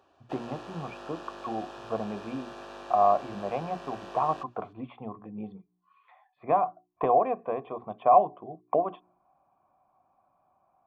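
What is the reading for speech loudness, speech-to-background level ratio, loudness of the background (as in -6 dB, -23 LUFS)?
-29.0 LUFS, 15.0 dB, -44.0 LUFS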